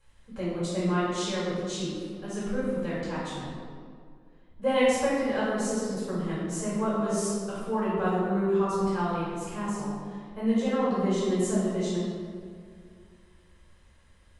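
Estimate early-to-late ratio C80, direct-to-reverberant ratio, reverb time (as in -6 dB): 0.5 dB, -9.0 dB, 2.2 s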